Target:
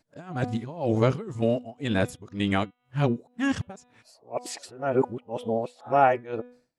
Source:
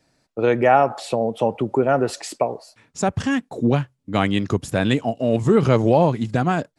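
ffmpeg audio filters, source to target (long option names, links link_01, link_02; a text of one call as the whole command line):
ffmpeg -i in.wav -af "areverse,bandreject=frequency=246.1:width_type=h:width=4,bandreject=frequency=492.2:width_type=h:width=4,bandreject=frequency=738.3:width_type=h:width=4,bandreject=frequency=984.4:width_type=h:width=4,bandreject=frequency=1230.5:width_type=h:width=4,bandreject=frequency=1476.6:width_type=h:width=4,bandreject=frequency=1722.7:width_type=h:width=4,bandreject=frequency=1968.8:width_type=h:width=4,bandreject=frequency=2214.9:width_type=h:width=4,bandreject=frequency=2461:width_type=h:width=4,bandreject=frequency=2707.1:width_type=h:width=4,bandreject=frequency=2953.2:width_type=h:width=4,bandreject=frequency=3199.3:width_type=h:width=4,bandreject=frequency=3445.4:width_type=h:width=4,bandreject=frequency=3691.5:width_type=h:width=4,bandreject=frequency=3937.6:width_type=h:width=4,tremolo=f=2:d=0.92,volume=-3.5dB" out.wav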